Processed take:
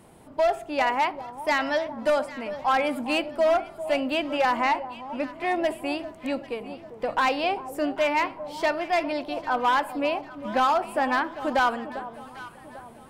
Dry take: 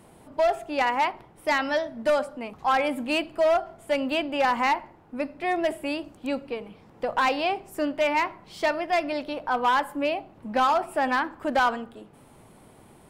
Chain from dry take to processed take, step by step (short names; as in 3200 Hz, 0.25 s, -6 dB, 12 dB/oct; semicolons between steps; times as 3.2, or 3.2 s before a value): 4.57–5.4 high shelf 7700 Hz -9.5 dB; echo with dull and thin repeats by turns 0.398 s, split 980 Hz, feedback 63%, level -12 dB